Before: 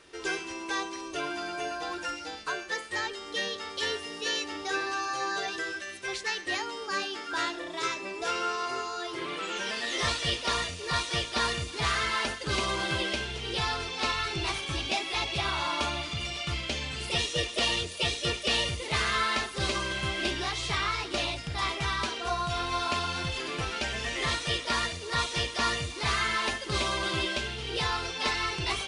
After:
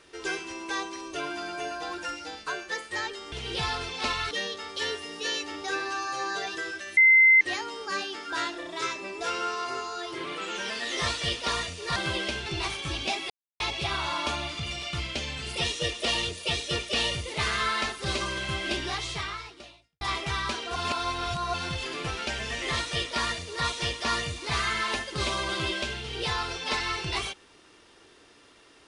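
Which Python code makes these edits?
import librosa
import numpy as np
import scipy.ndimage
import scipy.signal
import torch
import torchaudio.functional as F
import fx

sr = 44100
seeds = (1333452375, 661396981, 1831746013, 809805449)

y = fx.edit(x, sr, fx.bleep(start_s=5.98, length_s=0.44, hz=2070.0, db=-13.5),
    fx.cut(start_s=10.97, length_s=1.84),
    fx.move(start_s=13.31, length_s=0.99, to_s=3.32),
    fx.insert_silence(at_s=15.14, length_s=0.3),
    fx.fade_out_span(start_s=20.56, length_s=0.99, curve='qua'),
    fx.reverse_span(start_s=22.3, length_s=0.78), tone=tone)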